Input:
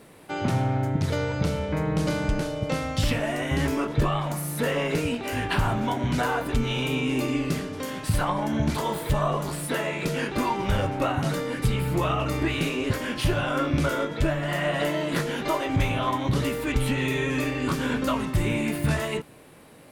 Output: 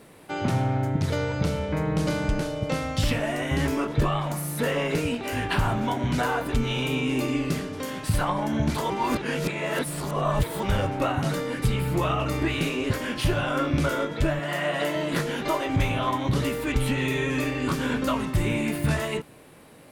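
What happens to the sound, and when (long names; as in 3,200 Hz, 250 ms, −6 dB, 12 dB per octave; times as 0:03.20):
0:08.90–0:10.63: reverse
0:14.39–0:14.96: high-pass filter 220 Hz 6 dB per octave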